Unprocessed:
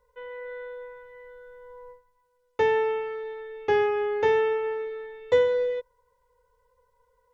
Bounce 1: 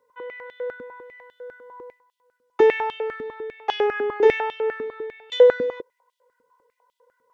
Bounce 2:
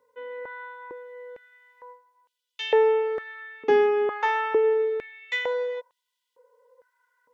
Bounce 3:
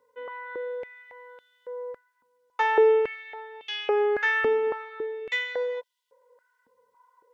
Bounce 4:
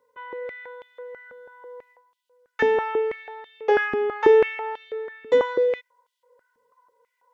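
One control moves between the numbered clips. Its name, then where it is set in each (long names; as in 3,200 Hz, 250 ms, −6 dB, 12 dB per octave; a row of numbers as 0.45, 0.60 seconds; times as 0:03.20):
high-pass on a step sequencer, speed: 10, 2.2, 3.6, 6.1 Hertz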